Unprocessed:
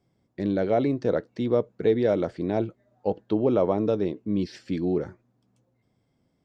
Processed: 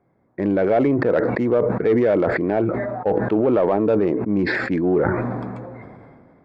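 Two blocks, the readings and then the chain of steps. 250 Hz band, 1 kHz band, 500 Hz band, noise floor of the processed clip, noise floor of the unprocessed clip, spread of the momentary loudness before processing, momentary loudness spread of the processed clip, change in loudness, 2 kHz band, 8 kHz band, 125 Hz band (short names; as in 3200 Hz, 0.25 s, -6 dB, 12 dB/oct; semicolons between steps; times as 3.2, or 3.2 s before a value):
+6.5 dB, +8.5 dB, +6.5 dB, -63 dBFS, -72 dBFS, 8 LU, 9 LU, +6.0 dB, +16.0 dB, n/a, +6.0 dB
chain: Wiener smoothing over 15 samples; resonant high shelf 3300 Hz -9 dB, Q 1.5; limiter -16 dBFS, peak gain reduction 6 dB; overdrive pedal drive 11 dB, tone 4300 Hz, clips at -16 dBFS; sustainer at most 26 dB/s; gain +7 dB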